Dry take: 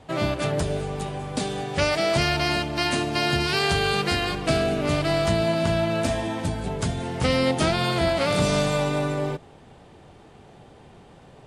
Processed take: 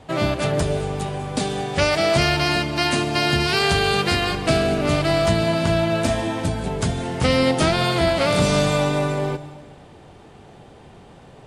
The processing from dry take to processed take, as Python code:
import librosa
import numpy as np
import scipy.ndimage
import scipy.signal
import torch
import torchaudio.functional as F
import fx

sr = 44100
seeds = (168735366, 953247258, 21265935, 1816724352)

y = fx.rev_plate(x, sr, seeds[0], rt60_s=1.3, hf_ratio=1.0, predelay_ms=110, drr_db=15.0)
y = y * librosa.db_to_amplitude(3.5)